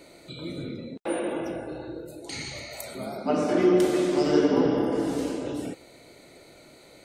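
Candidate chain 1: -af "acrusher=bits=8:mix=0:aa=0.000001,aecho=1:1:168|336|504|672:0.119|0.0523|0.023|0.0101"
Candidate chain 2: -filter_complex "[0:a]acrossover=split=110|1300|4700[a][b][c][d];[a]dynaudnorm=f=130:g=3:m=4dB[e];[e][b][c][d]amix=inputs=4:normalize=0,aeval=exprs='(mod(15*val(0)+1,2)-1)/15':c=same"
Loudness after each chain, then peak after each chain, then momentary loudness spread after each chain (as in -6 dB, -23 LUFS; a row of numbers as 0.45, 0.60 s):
-26.5, -30.0 LUFS; -9.5, -23.5 dBFS; 16, 12 LU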